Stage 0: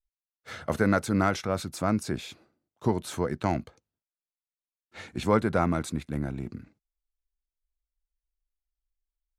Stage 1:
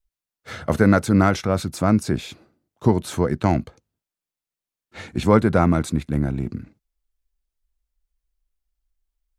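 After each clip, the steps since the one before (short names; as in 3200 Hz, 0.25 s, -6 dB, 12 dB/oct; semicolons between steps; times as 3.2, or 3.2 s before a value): low shelf 350 Hz +5.5 dB; gain +5 dB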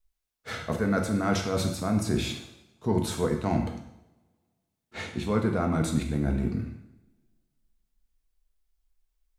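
reverse; compressor 10:1, threshold -23 dBFS, peak gain reduction 14.5 dB; reverse; two-slope reverb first 0.76 s, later 2 s, from -26 dB, DRR 2 dB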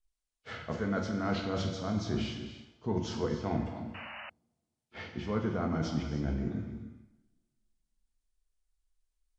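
nonlinear frequency compression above 2200 Hz 1.5:1; non-linear reverb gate 0.33 s rising, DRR 9 dB; painted sound noise, 3.94–4.3, 540–3000 Hz -38 dBFS; gain -6.5 dB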